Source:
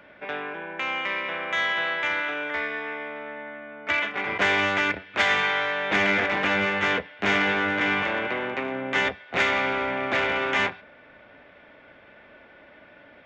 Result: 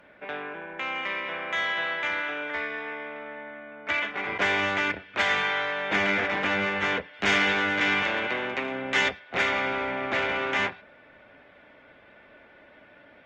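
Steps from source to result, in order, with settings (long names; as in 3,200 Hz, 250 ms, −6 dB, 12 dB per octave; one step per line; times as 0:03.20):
0:07.14–0:09.19: high-shelf EQ 3,200 Hz +10.5 dB
level −2.5 dB
Opus 24 kbit/s 48,000 Hz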